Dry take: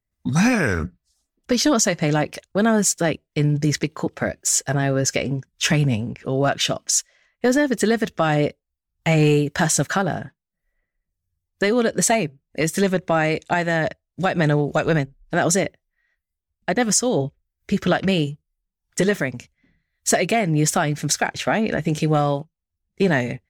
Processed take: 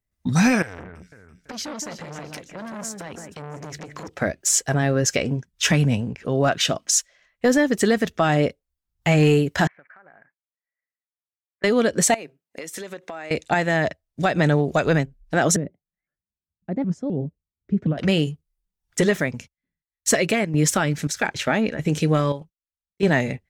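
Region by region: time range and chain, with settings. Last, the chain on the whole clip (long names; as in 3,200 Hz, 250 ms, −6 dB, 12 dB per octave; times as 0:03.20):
0:00.62–0:04.08: downward compressor, threshold −27 dBFS + delay that swaps between a low-pass and a high-pass 167 ms, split 2,400 Hz, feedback 56%, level −6.5 dB + saturating transformer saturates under 1,700 Hz
0:09.67–0:11.64: Chebyshev low-pass filter 2,300 Hz, order 6 + first difference + downward compressor 12 to 1, threshold −44 dBFS
0:12.14–0:13.31: high-pass filter 340 Hz + downward compressor 10 to 1, threshold −30 dBFS
0:15.56–0:17.98: resonant band-pass 190 Hz, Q 1.3 + pitch modulation by a square or saw wave saw up 3.9 Hz, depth 250 cents
0:19.29–0:23.03: noise gate −53 dBFS, range −23 dB + notch filter 720 Hz, Q 6.7 + square-wave tremolo 1.6 Hz, depth 60%, duty 85%
whole clip: no processing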